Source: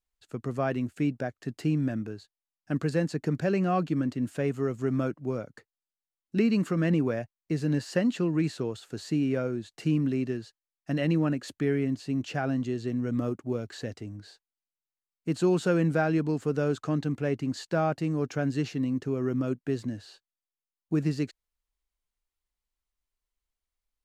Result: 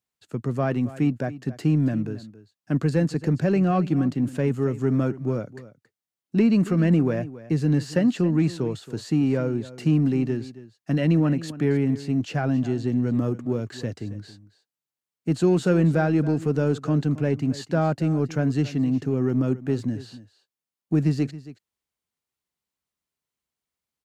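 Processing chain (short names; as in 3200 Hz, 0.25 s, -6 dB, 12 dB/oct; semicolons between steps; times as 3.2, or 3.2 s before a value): HPF 100 Hz 24 dB/oct; low shelf 260 Hz +8 dB; in parallel at -9 dB: soft clip -25 dBFS, distortion -9 dB; on the sum: echo 0.274 s -16.5 dB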